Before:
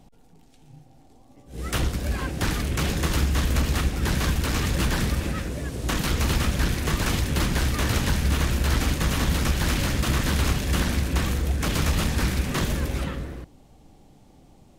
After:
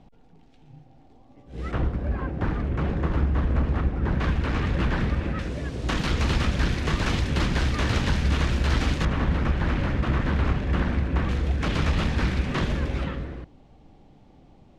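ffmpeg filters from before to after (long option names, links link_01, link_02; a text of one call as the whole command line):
ffmpeg -i in.wav -af "asetnsamples=nb_out_samples=441:pad=0,asendcmd='1.72 lowpass f 1300;4.2 lowpass f 2300;5.39 lowpass f 4600;9.05 lowpass f 1900;11.29 lowpass f 3500',lowpass=3400" out.wav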